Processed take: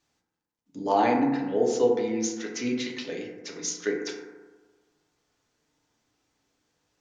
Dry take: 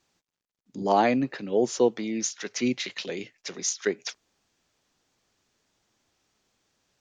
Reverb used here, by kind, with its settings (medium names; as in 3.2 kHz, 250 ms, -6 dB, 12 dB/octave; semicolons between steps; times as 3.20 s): FDN reverb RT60 1.3 s, low-frequency decay 1×, high-frequency decay 0.3×, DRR -1 dB; trim -4.5 dB